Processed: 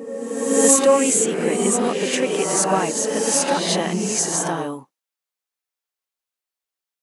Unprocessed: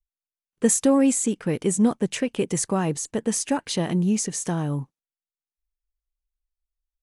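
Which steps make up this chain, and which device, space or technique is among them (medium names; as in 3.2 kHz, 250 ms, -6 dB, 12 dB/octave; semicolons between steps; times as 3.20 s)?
ghost voice (reverse; reverberation RT60 1.9 s, pre-delay 9 ms, DRR -2 dB; reverse; high-pass 430 Hz 12 dB/octave); trim +5 dB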